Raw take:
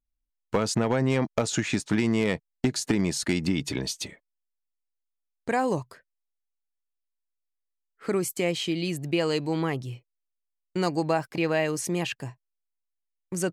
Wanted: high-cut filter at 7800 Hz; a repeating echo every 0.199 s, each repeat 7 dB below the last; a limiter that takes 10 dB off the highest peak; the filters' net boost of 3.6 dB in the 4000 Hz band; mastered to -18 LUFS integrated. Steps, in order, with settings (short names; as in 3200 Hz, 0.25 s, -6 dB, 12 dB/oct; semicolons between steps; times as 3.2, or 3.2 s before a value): LPF 7800 Hz; bell 4000 Hz +5 dB; limiter -22 dBFS; feedback echo 0.199 s, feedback 45%, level -7 dB; gain +14 dB